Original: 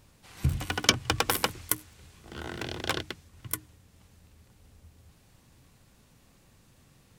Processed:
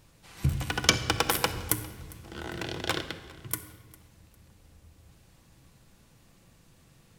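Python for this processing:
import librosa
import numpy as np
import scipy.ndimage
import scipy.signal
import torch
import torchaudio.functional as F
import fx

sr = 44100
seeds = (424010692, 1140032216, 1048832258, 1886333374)

y = fx.low_shelf(x, sr, hz=240.0, db=10.0, at=(1.53, 2.18))
y = fx.echo_feedback(y, sr, ms=403, feedback_pct=30, wet_db=-23.0)
y = fx.room_shoebox(y, sr, seeds[0], volume_m3=1600.0, walls='mixed', distance_m=0.71)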